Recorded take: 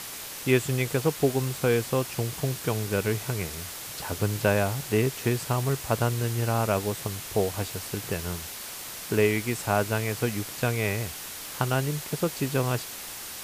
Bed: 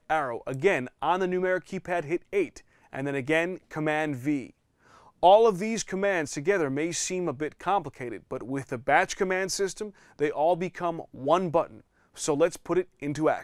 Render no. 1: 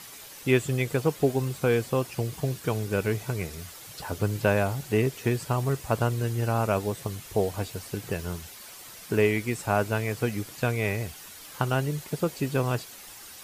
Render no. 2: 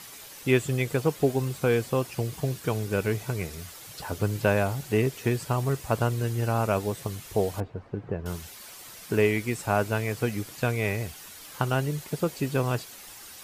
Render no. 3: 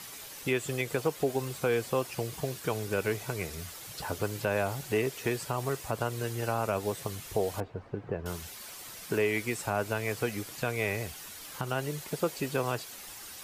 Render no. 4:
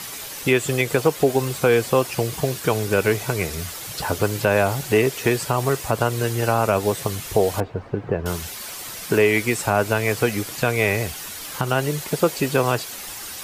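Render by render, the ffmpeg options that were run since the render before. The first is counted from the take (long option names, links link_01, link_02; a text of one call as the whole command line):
ffmpeg -i in.wav -af "afftdn=noise_reduction=9:noise_floor=-39" out.wav
ffmpeg -i in.wav -filter_complex "[0:a]asettb=1/sr,asplit=3[link_01][link_02][link_03];[link_01]atrim=end=7.604[link_04];[link_02]atrim=start=7.6:end=8.26,asetpts=PTS-STARTPTS,afade=type=in:duration=0.004:curve=qsin,afade=type=out:start_time=0.656:duration=0.004:curve=qsin,lowpass=1100[link_05];[link_03]atrim=start=8.256[link_06];[link_04][link_05]acrossfade=duration=0.004:curve1=hsin:curve2=qsin[link_07];[link_07][link_06]acrossfade=duration=0.004:curve1=qsin:curve2=hsin" out.wav
ffmpeg -i in.wav -filter_complex "[0:a]acrossover=split=340[link_01][link_02];[link_01]acompressor=threshold=-36dB:ratio=6[link_03];[link_02]alimiter=limit=-19dB:level=0:latency=1:release=122[link_04];[link_03][link_04]amix=inputs=2:normalize=0" out.wav
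ffmpeg -i in.wav -af "volume=11dB" out.wav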